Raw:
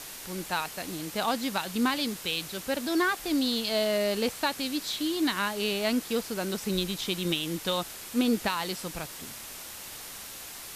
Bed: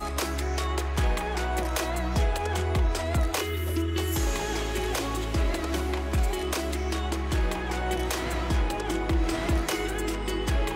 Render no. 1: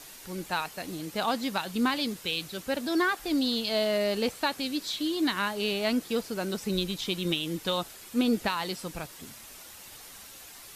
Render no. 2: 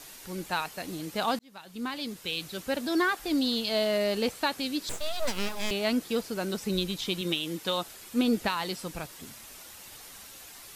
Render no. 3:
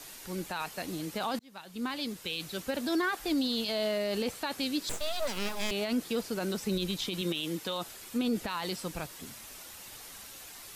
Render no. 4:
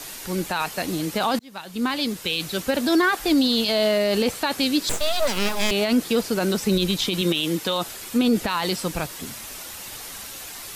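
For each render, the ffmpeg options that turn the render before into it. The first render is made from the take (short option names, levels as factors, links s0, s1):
-af "afftdn=nr=7:nf=-43"
-filter_complex "[0:a]asettb=1/sr,asplit=3[s0][s1][s2];[s0]atrim=end=4.894[s3];[s1]atrim=start=4.89:end=5.71,asetpts=PTS-STARTPTS,afade=t=in:d=0.004:c=qsin,afade=t=out:st=0.816:d=0.004:c=qsin,aeval=exprs='abs(val(0))':c=same[s4];[s2]atrim=start=5.706[s5];[s3][s4]acrossfade=d=0.004:c1=hsin:c2=qsin[s6];[s6][s5]acrossfade=d=0.004:c1=qsin:c2=hsin,asettb=1/sr,asplit=3[s7][s8][s9];[s7]atrim=end=7.214[s10];[s8]atrim=start=7.21:end=7.88,asetpts=PTS-STARTPTS,afade=t=in:d=0.004:c=qsin,afade=t=out:st=0.666:d=0.004:c=qsin,highpass=f=190:p=1[s11];[s9]atrim=start=7.876[s12];[s10][s11]acrossfade=d=0.004:c1=hsin:c2=qsin[s13];[s13][s12]acrossfade=d=0.004:c1=qsin:c2=hsin,asplit=2[s14][s15];[s14]atrim=end=1.39,asetpts=PTS-STARTPTS,afade=t=out:st=1.386:d=0.004:c=hsin[s16];[s15]atrim=start=1.39,asetpts=PTS-STARTPTS,afade=t=in:d=1.17[s17];[s16][s17]concat=n=2:v=0:a=1"
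-filter_complex "[0:a]acrossover=split=150|3000[s0][s1][s2];[s0]acompressor=threshold=0.0224:ratio=6[s3];[s3][s1][s2]amix=inputs=3:normalize=0,alimiter=limit=0.075:level=0:latency=1:release=14"
-af "volume=3.35"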